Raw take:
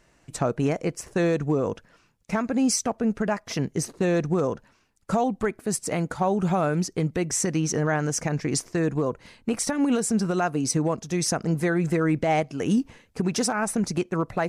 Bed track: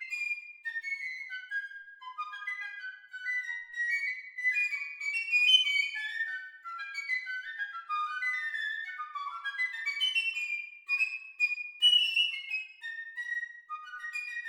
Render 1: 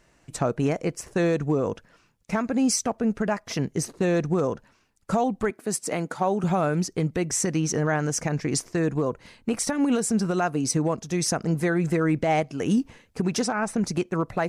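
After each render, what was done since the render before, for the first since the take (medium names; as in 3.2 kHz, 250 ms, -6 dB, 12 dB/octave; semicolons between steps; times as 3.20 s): 5.50–6.44 s: high-pass 190 Hz; 13.41–13.81 s: distance through air 59 m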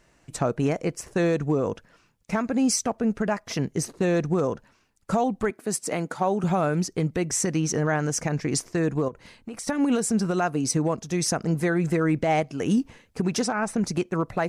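9.08–9.68 s: compression 5:1, threshold -33 dBFS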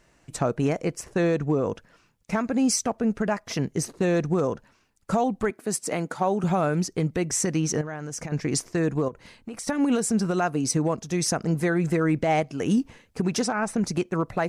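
1.04–1.69 s: treble shelf 6.9 kHz -7 dB; 7.81–8.32 s: compression 10:1, threshold -29 dBFS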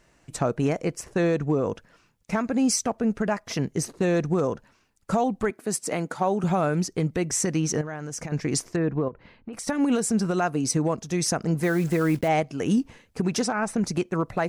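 8.76–9.53 s: distance through air 340 m; 11.63–12.29 s: block-companded coder 5-bit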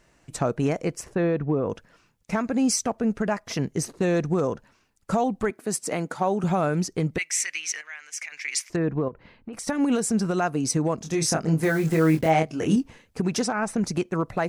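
1.15–1.70 s: distance through air 310 m; 7.18–8.70 s: resonant high-pass 2.2 kHz, resonance Q 3.9; 10.98–12.76 s: doubling 25 ms -4 dB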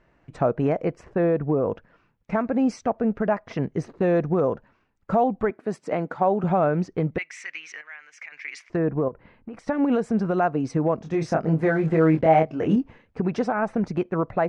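low-pass 2.1 kHz 12 dB/octave; dynamic bell 620 Hz, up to +5 dB, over -35 dBFS, Q 1.4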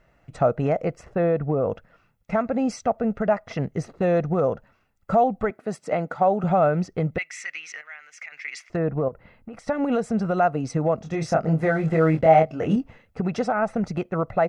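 treble shelf 6.6 kHz +9 dB; comb 1.5 ms, depth 40%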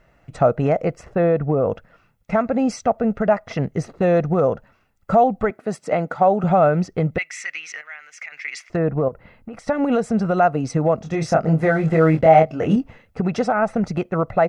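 trim +4 dB; peak limiter -3 dBFS, peak gain reduction 1.5 dB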